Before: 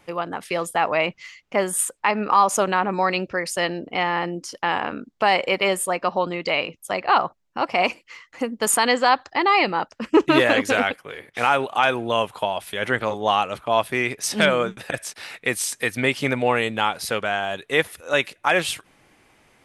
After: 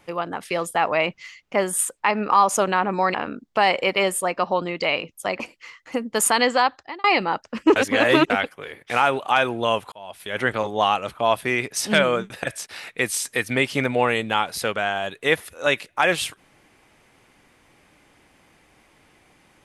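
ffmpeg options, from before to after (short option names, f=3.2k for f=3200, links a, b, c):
-filter_complex "[0:a]asplit=7[a][b][c][d][e][f][g];[a]atrim=end=3.142[h];[b]atrim=start=4.788:end=7.052[i];[c]atrim=start=7.868:end=9.51,asetpts=PTS-STARTPTS,afade=t=out:st=1.142:d=0.5[j];[d]atrim=start=9.51:end=10.232,asetpts=PTS-STARTPTS,afade=t=in:d=0.004:c=hsin[k];[e]atrim=start=10.228:end=10.772,asetpts=PTS-STARTPTS,areverse[l];[f]atrim=start=10.768:end=12.39,asetpts=PTS-STARTPTS,afade=t=out:st=1.618:d=0.004:c=hsin[m];[g]atrim=start=12.39,asetpts=PTS-STARTPTS,afade=t=in:d=0.53[n];[h][i]acrossfade=d=0.004:c1=hsin:c2=hsin[o];[j][k]concat=n=2:v=0:a=1[p];[o][p]acrossfade=d=0.004:c1=hsin:c2=hsin[q];[q][l]acrossfade=d=0.004:c1=hsin:c2=hsin[r];[m][n]concat=n=2:v=0:a=1[s];[r][s]acrossfade=d=0.004:c1=hsin:c2=hsin"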